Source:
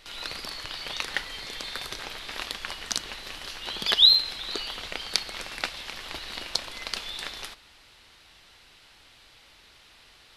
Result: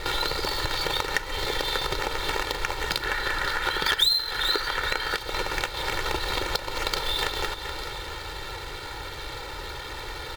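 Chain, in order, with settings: median filter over 15 samples; 3.02–5.17 s: peaking EQ 1.6 kHz +12 dB 0.76 oct; one-sided clip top -20.5 dBFS, bottom -10.5 dBFS; comb 2.2 ms, depth 80%; feedback delay 426 ms, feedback 43%, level -19.5 dB; compression 6:1, threshold -47 dBFS, peak gain reduction 27 dB; peaking EQ 3.2 kHz +5 dB 1 oct; loudness maximiser +28.5 dB; trim -7 dB

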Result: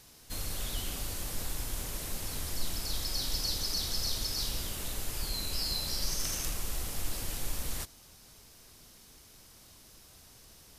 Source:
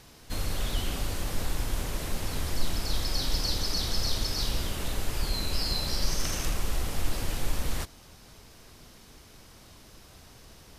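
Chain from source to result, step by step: treble shelf 4.9 kHz +11.5 dB; trim -7.5 dB

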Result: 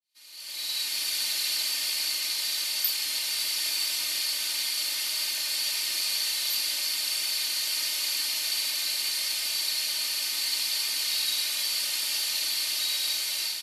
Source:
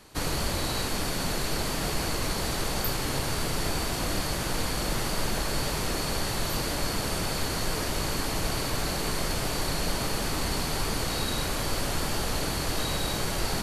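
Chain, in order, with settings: fade-in on the opening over 1.28 s; high-order bell 3.2 kHz +9.5 dB; comb 3.3 ms, depth 71%; level rider gain up to 11.5 dB; differentiator; trim -7.5 dB

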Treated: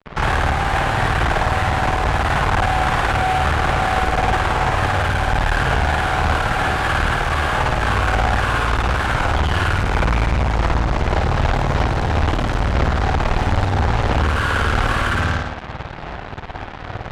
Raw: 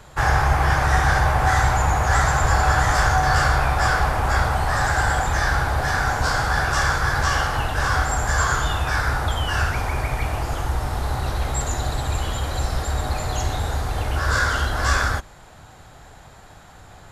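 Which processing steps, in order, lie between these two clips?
compression 2:1, threshold -29 dBFS, peak gain reduction 9 dB; spring tank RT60 1 s, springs 53 ms, chirp 60 ms, DRR -8 dB; fuzz box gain 31 dB, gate -37 dBFS; distance through air 300 m; Chebyshev shaper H 3 -17 dB, 4 -11 dB, 6 -15 dB, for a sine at -10 dBFS

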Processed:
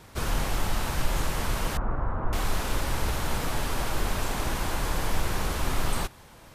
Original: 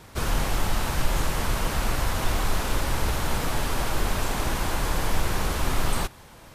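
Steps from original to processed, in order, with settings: 1.77–2.33 s: Chebyshev low-pass 1.3 kHz, order 3; trim -2.5 dB

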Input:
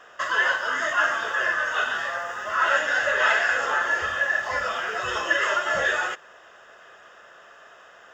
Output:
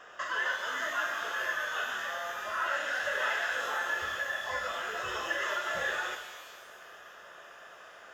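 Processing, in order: compression 1.5:1, threshold -42 dBFS, peak gain reduction 9 dB; pitch-shifted reverb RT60 1.4 s, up +12 st, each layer -8 dB, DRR 6 dB; trim -2.5 dB

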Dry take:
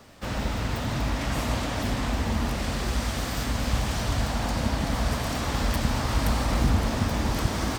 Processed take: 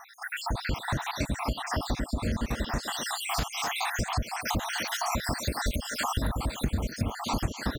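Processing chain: random holes in the spectrogram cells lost 73%; speakerphone echo 250 ms, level -9 dB; compression 6:1, threshold -35 dBFS, peak gain reduction 16.5 dB; 4.40–7.02 s: treble shelf 9.7 kHz +7 dB; trim +9 dB

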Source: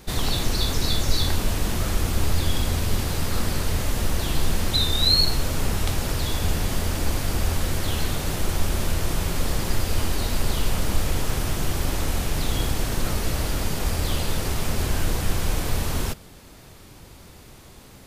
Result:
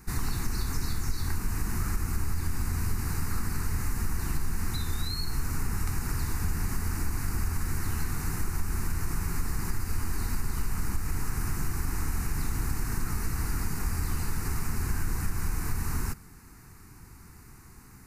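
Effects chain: compression, threshold -20 dBFS, peak gain reduction 8 dB; static phaser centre 1.4 kHz, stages 4; trim -2.5 dB

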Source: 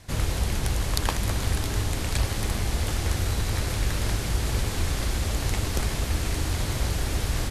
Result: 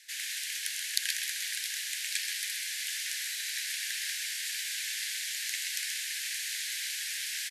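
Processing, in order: steep high-pass 1.6 kHz 96 dB/octave; on a send: delay 129 ms -6.5 dB

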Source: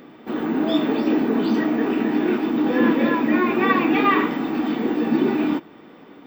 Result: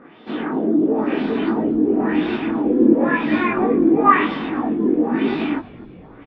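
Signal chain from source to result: LFO low-pass sine 0.98 Hz 340–4000 Hz; frequency-shifting echo 248 ms, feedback 52%, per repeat -62 Hz, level -21 dB; chorus voices 2, 1.2 Hz, delay 21 ms, depth 3.3 ms; trim +2.5 dB

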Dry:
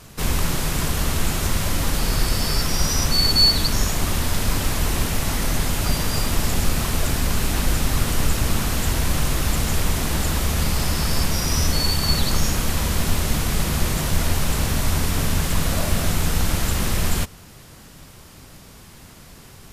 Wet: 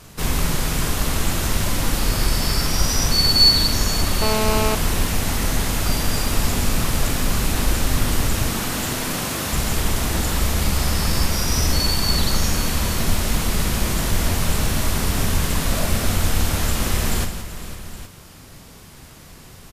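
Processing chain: 8.42–9.53 s: high-pass 150 Hz 12 dB/octave; multi-tap echo 43/169/503/818 ms -8/-10/-14.5/-15 dB; 4.22–4.75 s: mobile phone buzz -22 dBFS

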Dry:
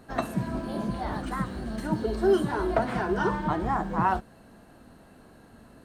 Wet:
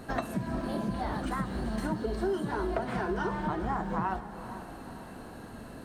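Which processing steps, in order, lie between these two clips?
compression 4:1, threshold -38 dBFS, peak gain reduction 17 dB; on a send: echo that smears into a reverb 469 ms, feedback 49%, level -12 dB; on the sum: trim +7 dB

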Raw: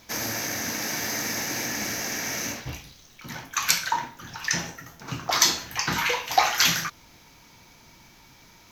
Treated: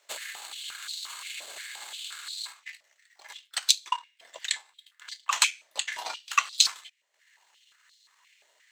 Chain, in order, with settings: peaking EQ 4.7 kHz +7 dB 0.95 oct; ring modulator 1.9 kHz; transient shaper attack +10 dB, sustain -12 dB; step-sequenced high-pass 5.7 Hz 620–4100 Hz; trim -14 dB

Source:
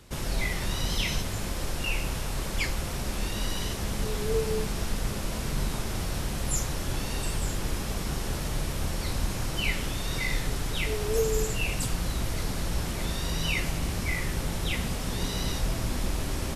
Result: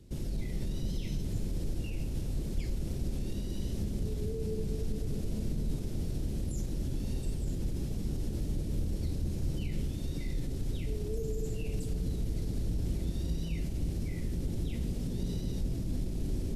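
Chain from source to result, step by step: peak limiter -24.5 dBFS, peak gain reduction 11 dB; FFT filter 330 Hz 0 dB, 1.1 kHz -22 dB, 4.2 kHz -12 dB; on a send: bucket-brigade echo 219 ms, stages 1024, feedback 67%, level -6 dB

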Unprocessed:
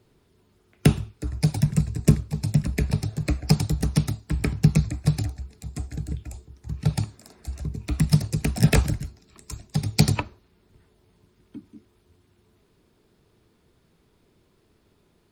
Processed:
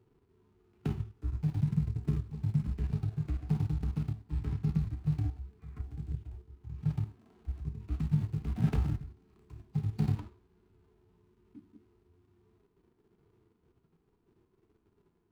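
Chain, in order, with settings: median filter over 25 samples; tone controls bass -5 dB, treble -4 dB; harmonic-percussive split percussive -16 dB; peaking EQ 580 Hz -11.5 dB 0.5 oct; in parallel at +2 dB: level held to a coarse grid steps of 18 dB; on the sum: time-frequency box 5.59–5.81 s, 1–2.5 kHz +9 dB; trim -3 dB

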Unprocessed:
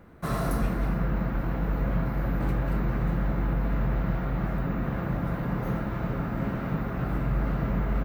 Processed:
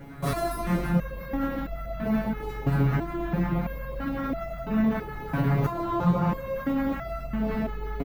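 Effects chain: 5.64–6.30 s: graphic EQ 125/500/1000/2000/4000/8000 Hz +9/+8/+10/-3/+5/+6 dB; echo from a far wall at 58 m, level -9 dB; LFO notch sine 5.4 Hz 370–1700 Hz; loudness maximiser +27 dB; resonator arpeggio 3 Hz 140–670 Hz; trim -4 dB

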